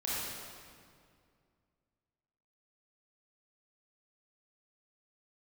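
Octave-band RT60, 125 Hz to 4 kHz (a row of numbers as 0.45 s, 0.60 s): 2.8 s, 2.6 s, 2.3 s, 2.1 s, 1.9 s, 1.6 s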